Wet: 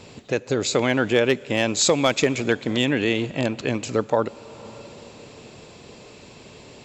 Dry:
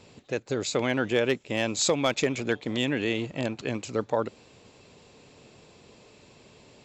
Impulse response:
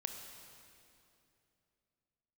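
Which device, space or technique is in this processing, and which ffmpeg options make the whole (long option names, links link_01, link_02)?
ducked reverb: -filter_complex "[0:a]asplit=3[link_01][link_02][link_03];[1:a]atrim=start_sample=2205[link_04];[link_02][link_04]afir=irnorm=-1:irlink=0[link_05];[link_03]apad=whole_len=301772[link_06];[link_05][link_06]sidechaincompress=threshold=-33dB:ratio=12:attack=16:release=575,volume=-1.5dB[link_07];[link_01][link_07]amix=inputs=2:normalize=0,volume=4.5dB"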